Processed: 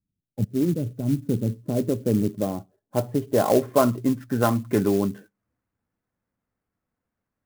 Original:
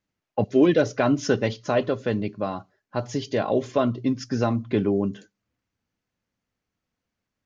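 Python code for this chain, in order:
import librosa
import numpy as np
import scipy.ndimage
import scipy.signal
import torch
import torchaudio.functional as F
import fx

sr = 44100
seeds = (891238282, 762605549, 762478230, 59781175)

p1 = fx.filter_sweep_lowpass(x, sr, from_hz=180.0, to_hz=1600.0, start_s=1.06, end_s=4.29, q=0.94)
p2 = fx.dynamic_eq(p1, sr, hz=1600.0, q=0.93, threshold_db=-37.0, ratio=4.0, max_db=6)
p3 = fx.rider(p2, sr, range_db=10, speed_s=2.0)
p4 = p2 + F.gain(torch.from_numpy(p3), 0.0).numpy()
p5 = fx.clock_jitter(p4, sr, seeds[0], jitter_ms=0.043)
y = F.gain(torch.from_numpy(p5), -4.0).numpy()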